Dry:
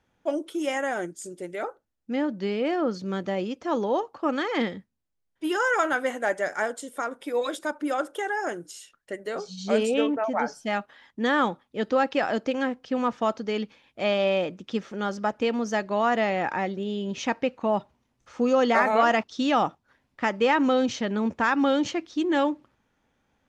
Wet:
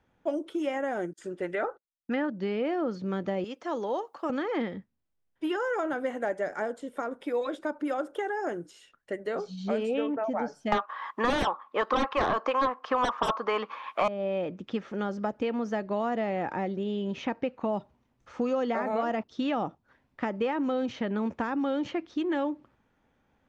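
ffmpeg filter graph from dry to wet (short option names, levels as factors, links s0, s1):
-filter_complex "[0:a]asettb=1/sr,asplit=3[s0][s1][s2];[s0]atrim=end=1.134[s3];[s1]atrim=start=1.13:end=2.3,asetpts=PTS-STARTPTS,afade=t=in:d=0.004:c=qsin,afade=t=out:st=1.166:d=0.004:c=qsin,equalizer=f=1700:t=o:w=2.1:g=13.5,bandreject=f=2200:w=9,agate=range=0.0316:threshold=0.00398:ratio=16:release=100:detection=peak[s4];[s2]atrim=start=2.296[s5];[s3][s4]acrossfade=d=0.004:c1=hsin:c2=qsin[s6];[s6][s5]acrossfade=d=0.004:c1=qsin:c2=hsin,asettb=1/sr,asplit=3[s7][s8][s9];[s7]atrim=end=3.444[s10];[s8]atrim=start=3.44:end=4.3,asetpts=PTS-STARTPTS,afade=t=in:d=0.004:c=qsin,afade=t=out:st=0.856:d=0.004:c=qsin,highpass=f=630:p=1,aemphasis=mode=production:type=50fm,bandreject=f=2500:w=23[s11];[s9]atrim=start=4.296[s12];[s10][s11]acrossfade=d=0.004:c1=hsin:c2=qsin[s13];[s13][s12]acrossfade=d=0.004:c1=qsin:c2=hsin,asettb=1/sr,asplit=3[s14][s15][s16];[s14]atrim=end=10.724[s17];[s15]atrim=start=10.72:end=14.08,asetpts=PTS-STARTPTS,afade=t=in:d=0.004:c=qsin,afade=t=out:st=3.356:d=0.004:c=qsin,highpass=f=1100:t=q:w=13,aeval=exprs='0.891*sin(PI/2*7.94*val(0)/0.891)':c=same[s18];[s16]atrim=start=14.076[s19];[s17][s18]acrossfade=d=0.004:c1=hsin:c2=qsin[s20];[s20][s19]acrossfade=d=0.004:c1=qsin:c2=hsin,highshelf=f=3900:g=-11.5,acrossover=split=660|3600[s21][s22][s23];[s21]acompressor=threshold=0.0316:ratio=4[s24];[s22]acompressor=threshold=0.0126:ratio=4[s25];[s23]acompressor=threshold=0.001:ratio=4[s26];[s24][s25][s26]amix=inputs=3:normalize=0,volume=1.19"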